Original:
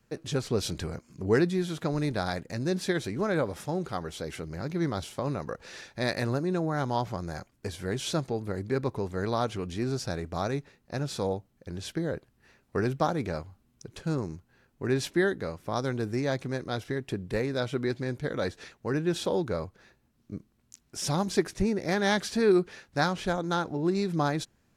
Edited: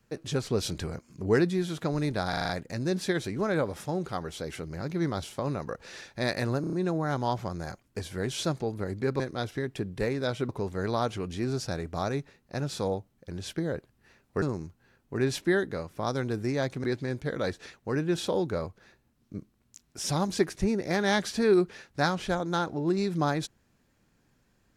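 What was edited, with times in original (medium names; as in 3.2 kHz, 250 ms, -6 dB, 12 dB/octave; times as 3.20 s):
2.29 s: stutter 0.04 s, 6 plays
6.41 s: stutter 0.03 s, 5 plays
12.81–14.11 s: delete
16.53–17.82 s: move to 8.88 s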